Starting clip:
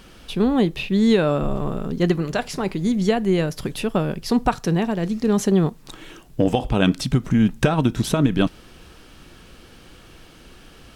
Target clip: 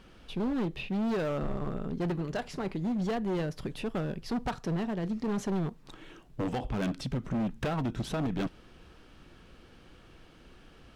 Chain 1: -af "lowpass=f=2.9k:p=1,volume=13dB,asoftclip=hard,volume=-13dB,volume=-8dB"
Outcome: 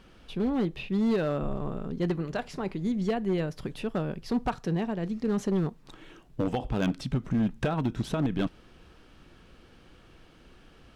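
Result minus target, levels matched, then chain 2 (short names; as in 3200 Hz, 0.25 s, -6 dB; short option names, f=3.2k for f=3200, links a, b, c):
overloaded stage: distortion -8 dB
-af "lowpass=f=2.9k:p=1,volume=19.5dB,asoftclip=hard,volume=-19.5dB,volume=-8dB"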